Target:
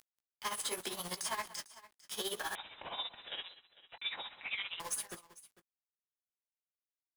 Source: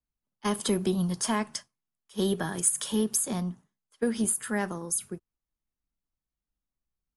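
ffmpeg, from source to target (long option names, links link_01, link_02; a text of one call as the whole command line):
ffmpeg -i in.wav -filter_complex "[0:a]highpass=880,acompressor=mode=upward:threshold=-38dB:ratio=2.5,alimiter=limit=-24dB:level=0:latency=1:release=15,acompressor=threshold=-35dB:ratio=4,asoftclip=type=tanh:threshold=-36dB,acrusher=bits=7:mix=0:aa=0.000001,flanger=delay=16:depth=7.4:speed=0.81,tremolo=f=15:d=0.7,aecho=1:1:186|450:0.133|0.106,asettb=1/sr,asplit=3[link_01][link_02][link_03];[link_01]atrim=end=2.554[link_04];[link_02]atrim=start=2.55:end=4.8,asetpts=PTS-STARTPTS,afade=type=in:duration=0.004:curve=qsin,afade=type=out:start_time=2.246:duration=0.004:curve=qsin,lowpass=frequency=3400:width_type=q:width=0.5098,lowpass=frequency=3400:width_type=q:width=0.6013,lowpass=frequency=3400:width_type=q:width=0.9,lowpass=frequency=3400:width_type=q:width=2.563,afreqshift=-4000[link_05];[link_03]atrim=start=4.796[link_06];[link_04][link_05]acrossfade=duration=0.004:curve1=hsin:curve2=qsin[link_07];[link_07][link_06]acrossfade=duration=0.004:curve1=qsin:curve2=hsin,volume=9.5dB" out.wav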